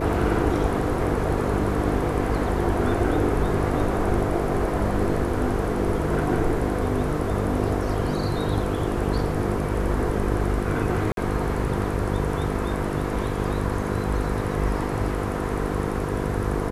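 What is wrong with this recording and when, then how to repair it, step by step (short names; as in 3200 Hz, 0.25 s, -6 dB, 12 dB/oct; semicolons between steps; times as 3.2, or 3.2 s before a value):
buzz 50 Hz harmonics 10 -28 dBFS
11.12–11.17 gap 52 ms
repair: de-hum 50 Hz, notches 10; interpolate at 11.12, 52 ms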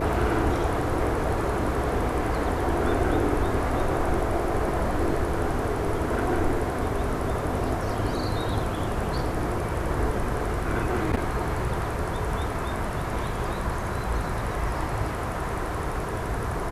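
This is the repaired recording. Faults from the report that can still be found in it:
none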